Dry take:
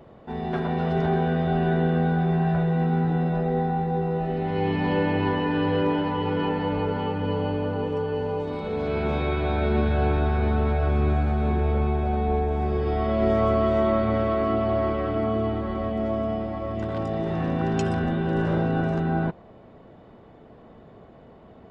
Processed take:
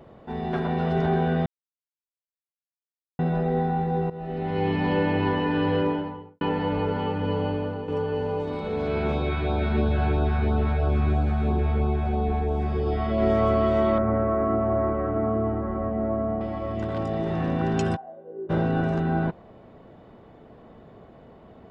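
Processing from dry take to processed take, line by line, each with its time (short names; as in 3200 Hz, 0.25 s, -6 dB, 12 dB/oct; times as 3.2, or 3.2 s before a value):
1.46–3.19 mute
4.1–4.71 fade in equal-power, from -15.5 dB
5.72–6.41 studio fade out
7.38–7.88 fade out equal-power, to -8.5 dB
9.12–13.18 LFO notch sine 3 Hz 380–2100 Hz
13.98–16.41 LPF 1700 Hz 24 dB/oct
17.95–18.49 band-pass 840 Hz -> 350 Hz, Q 14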